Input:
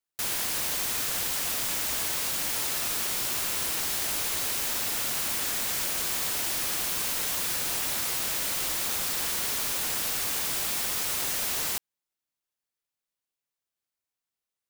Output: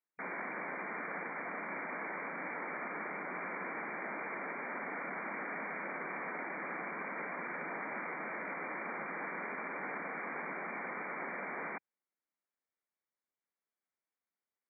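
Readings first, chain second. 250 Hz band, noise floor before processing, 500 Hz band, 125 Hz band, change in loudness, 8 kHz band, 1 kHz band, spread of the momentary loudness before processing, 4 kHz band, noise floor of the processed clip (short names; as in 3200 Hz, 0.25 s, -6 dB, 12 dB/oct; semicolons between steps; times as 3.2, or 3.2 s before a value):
-2.0 dB, under -85 dBFS, -1.5 dB, -10.5 dB, -13.5 dB, under -40 dB, -1.5 dB, 0 LU, under -40 dB, under -85 dBFS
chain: brick-wall FIR band-pass 160–2400 Hz; gain -1.5 dB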